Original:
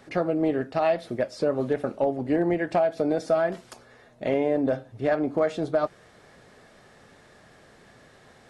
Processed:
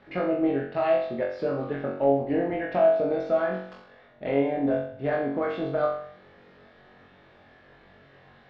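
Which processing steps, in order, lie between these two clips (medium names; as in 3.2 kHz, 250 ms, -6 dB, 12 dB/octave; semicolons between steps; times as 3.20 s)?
low-pass 3.7 kHz 24 dB/octave; on a send: flutter echo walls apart 3.7 m, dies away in 0.61 s; on the sum: trim -4.5 dB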